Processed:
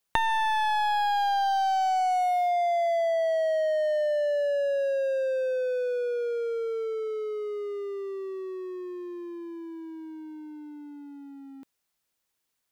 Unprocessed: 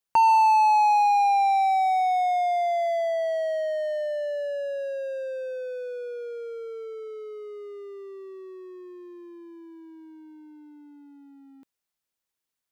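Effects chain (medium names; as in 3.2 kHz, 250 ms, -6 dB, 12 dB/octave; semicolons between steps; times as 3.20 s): one-sided wavefolder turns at -19.5 dBFS; compression, threshold -29 dBFS, peak gain reduction 11.5 dB; trim +6 dB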